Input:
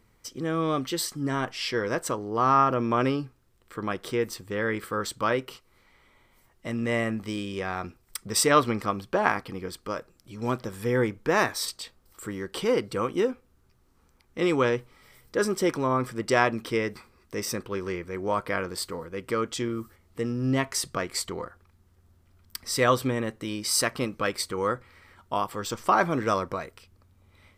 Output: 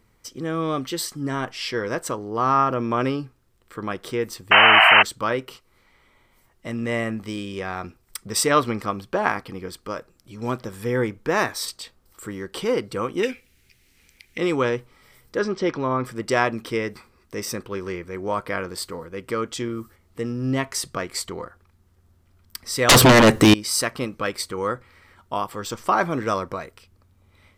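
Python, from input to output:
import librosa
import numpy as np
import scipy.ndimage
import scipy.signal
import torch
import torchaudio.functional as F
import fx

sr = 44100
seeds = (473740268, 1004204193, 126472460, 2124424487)

y = fx.spec_paint(x, sr, seeds[0], shape='noise', start_s=4.51, length_s=0.52, low_hz=610.0, high_hz=3100.0, level_db=-14.0)
y = fx.high_shelf_res(y, sr, hz=1600.0, db=11.5, q=3.0, at=(13.23, 14.38))
y = fx.lowpass(y, sr, hz=5100.0, slope=24, at=(15.39, 16.05))
y = fx.fold_sine(y, sr, drive_db=19, ceiling_db=-9.0, at=(22.89, 23.54))
y = y * 10.0 ** (1.5 / 20.0)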